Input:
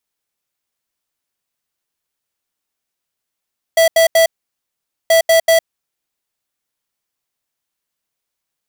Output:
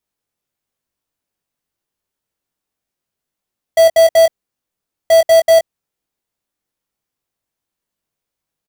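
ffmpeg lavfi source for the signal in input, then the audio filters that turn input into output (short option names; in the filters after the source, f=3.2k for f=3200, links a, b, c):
-f lavfi -i "aevalsrc='0.316*(2*lt(mod(657*t,1),0.5)-1)*clip(min(mod(mod(t,1.33),0.19),0.11-mod(mod(t,1.33),0.19))/0.005,0,1)*lt(mod(t,1.33),0.57)':d=2.66:s=44100"
-filter_complex "[0:a]tiltshelf=f=810:g=4.5,asplit=2[a][b];[b]adelay=20,volume=-5.5dB[c];[a][c]amix=inputs=2:normalize=0"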